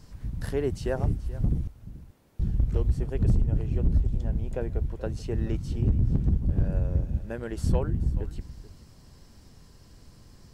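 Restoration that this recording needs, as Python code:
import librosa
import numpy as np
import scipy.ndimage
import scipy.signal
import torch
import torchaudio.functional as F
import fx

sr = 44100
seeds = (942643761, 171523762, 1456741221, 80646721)

y = fx.fix_declip(x, sr, threshold_db=-15.0)
y = fx.fix_echo_inverse(y, sr, delay_ms=431, level_db=-17.5)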